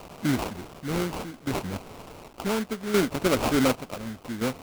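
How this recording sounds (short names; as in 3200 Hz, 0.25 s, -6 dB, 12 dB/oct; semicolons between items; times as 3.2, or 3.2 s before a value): a quantiser's noise floor 8-bit, dither triangular; chopped level 0.68 Hz, depth 60%, duty 55%; aliases and images of a low sample rate 1800 Hz, jitter 20%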